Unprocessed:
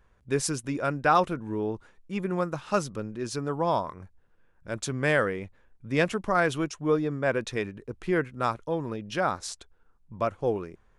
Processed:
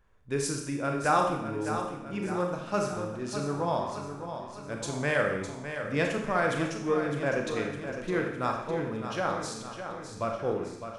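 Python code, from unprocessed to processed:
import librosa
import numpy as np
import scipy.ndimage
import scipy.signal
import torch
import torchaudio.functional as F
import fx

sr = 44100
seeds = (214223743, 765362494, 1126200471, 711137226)

p1 = x + fx.echo_feedback(x, sr, ms=608, feedback_pct=56, wet_db=-9.0, dry=0)
p2 = fx.rev_schroeder(p1, sr, rt60_s=0.75, comb_ms=28, drr_db=2.0)
y = F.gain(torch.from_numpy(p2), -4.5).numpy()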